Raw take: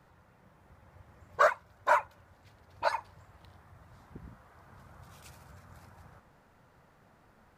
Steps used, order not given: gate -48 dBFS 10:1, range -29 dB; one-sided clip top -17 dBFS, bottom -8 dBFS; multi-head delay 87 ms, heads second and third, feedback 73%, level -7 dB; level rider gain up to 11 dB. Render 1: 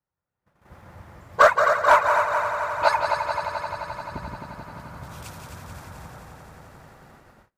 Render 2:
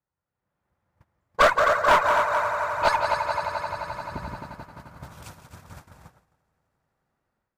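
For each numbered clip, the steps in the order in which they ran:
multi-head delay > one-sided clip > level rider > gate; multi-head delay > gate > level rider > one-sided clip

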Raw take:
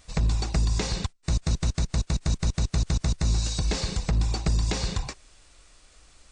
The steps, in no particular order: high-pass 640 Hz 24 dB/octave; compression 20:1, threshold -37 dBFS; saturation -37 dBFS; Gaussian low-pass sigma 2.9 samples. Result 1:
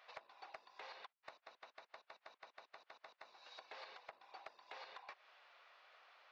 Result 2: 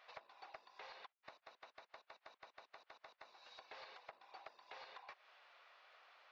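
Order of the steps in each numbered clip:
Gaussian low-pass > compression > high-pass > saturation; compression > high-pass > saturation > Gaussian low-pass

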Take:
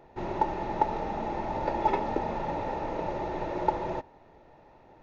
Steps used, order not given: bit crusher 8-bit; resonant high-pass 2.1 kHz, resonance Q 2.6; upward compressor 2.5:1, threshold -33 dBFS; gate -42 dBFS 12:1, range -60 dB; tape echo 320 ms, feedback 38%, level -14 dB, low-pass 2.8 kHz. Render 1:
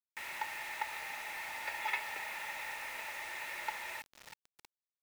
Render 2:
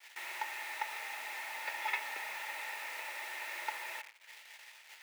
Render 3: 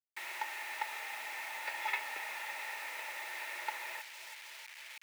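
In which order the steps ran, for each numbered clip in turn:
gate > tape echo > upward compressor > resonant high-pass > bit crusher; upward compressor > bit crusher > tape echo > gate > resonant high-pass; gate > tape echo > upward compressor > bit crusher > resonant high-pass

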